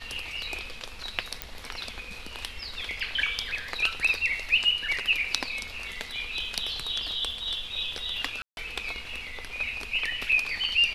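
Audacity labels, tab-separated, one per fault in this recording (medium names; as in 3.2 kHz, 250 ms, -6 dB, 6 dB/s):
1.420000	1.420000	pop -12 dBFS
8.420000	8.570000	dropout 151 ms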